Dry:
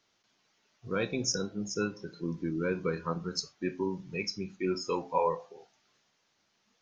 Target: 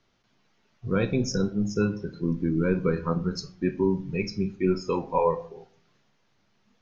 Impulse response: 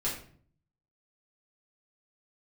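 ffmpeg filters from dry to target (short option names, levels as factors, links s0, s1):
-filter_complex "[0:a]aemphasis=mode=reproduction:type=bsi,asplit=2[s0][s1];[1:a]atrim=start_sample=2205[s2];[s1][s2]afir=irnorm=-1:irlink=0,volume=0.15[s3];[s0][s3]amix=inputs=2:normalize=0,volume=1.33"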